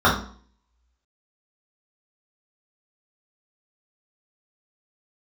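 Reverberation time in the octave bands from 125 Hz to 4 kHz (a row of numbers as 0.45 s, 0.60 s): 0.50 s, 0.55 s, 0.50 s, 0.50 s, 0.40 s, 0.40 s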